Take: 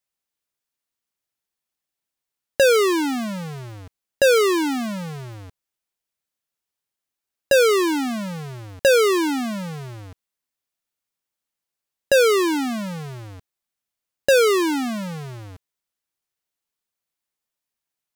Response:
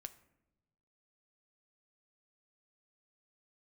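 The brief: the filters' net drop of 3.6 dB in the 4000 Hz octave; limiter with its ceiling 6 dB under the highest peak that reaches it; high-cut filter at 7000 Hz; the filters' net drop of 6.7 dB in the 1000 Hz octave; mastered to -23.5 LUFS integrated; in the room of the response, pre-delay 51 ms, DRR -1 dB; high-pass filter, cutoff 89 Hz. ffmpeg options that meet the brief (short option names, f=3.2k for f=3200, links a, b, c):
-filter_complex "[0:a]highpass=89,lowpass=7k,equalizer=f=1k:t=o:g=-9,equalizer=f=4k:t=o:g=-3.5,alimiter=limit=-17dB:level=0:latency=1,asplit=2[a][b];[1:a]atrim=start_sample=2205,adelay=51[c];[b][c]afir=irnorm=-1:irlink=0,volume=6.5dB[d];[a][d]amix=inputs=2:normalize=0,volume=-3.5dB"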